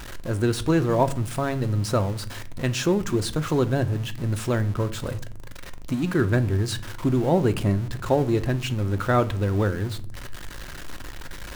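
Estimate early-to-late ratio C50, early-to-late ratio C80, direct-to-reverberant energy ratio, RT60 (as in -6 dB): 17.5 dB, 23.0 dB, 9.5 dB, 0.55 s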